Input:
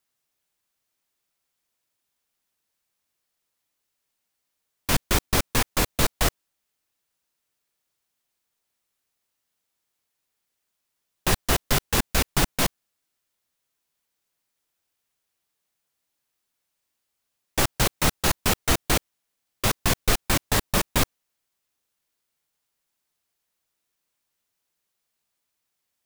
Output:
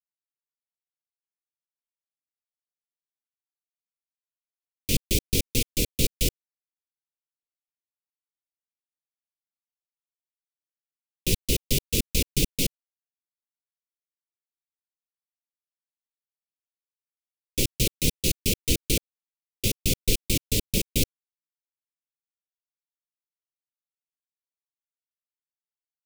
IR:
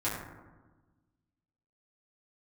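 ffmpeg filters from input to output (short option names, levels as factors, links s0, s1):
-af "asuperstop=centerf=1100:order=12:qfactor=0.61,aeval=exprs='sgn(val(0))*max(abs(val(0))-0.0119,0)':c=same,equalizer=f=1100:w=2.2:g=-8"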